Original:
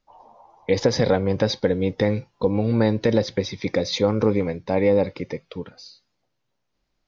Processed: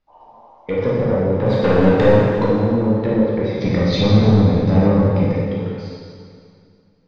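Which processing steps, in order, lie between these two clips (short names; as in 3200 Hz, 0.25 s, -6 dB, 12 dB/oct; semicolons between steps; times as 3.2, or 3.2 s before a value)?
treble ducked by the level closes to 540 Hz, closed at -14 dBFS; 1.46–2.44 sample leveller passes 3; 3.6–5.26 tone controls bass +14 dB, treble +14 dB; soft clip -12.5 dBFS, distortion -12 dB; air absorption 150 m; reverb RT60 2.3 s, pre-delay 8 ms, DRR -6.5 dB; gain -1 dB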